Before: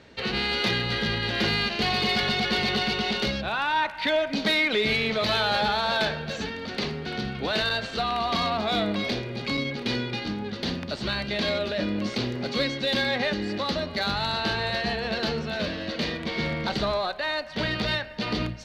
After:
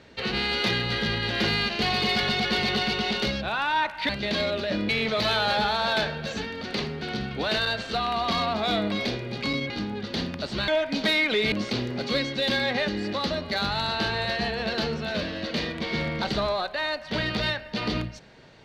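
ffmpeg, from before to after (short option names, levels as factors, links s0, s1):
-filter_complex "[0:a]asplit=6[s0][s1][s2][s3][s4][s5];[s0]atrim=end=4.092[s6];[s1]atrim=start=11.168:end=11.972[s7];[s2]atrim=start=4.928:end=9.742[s8];[s3]atrim=start=10.188:end=11.172[s9];[s4]atrim=start=4.088:end=4.932[s10];[s5]atrim=start=11.968[s11];[s6][s7]acrossfade=d=0.004:c1=hsin:c2=hsin[s12];[s12][s8]acrossfade=d=0.004:c1=hsin:c2=hsin[s13];[s13][s9]acrossfade=d=0.004:c1=hsin:c2=hsin[s14];[s14][s10]acrossfade=d=0.004:c1=hsin:c2=hsin[s15];[s15][s11]acrossfade=d=0.004:c1=hsin:c2=hsin"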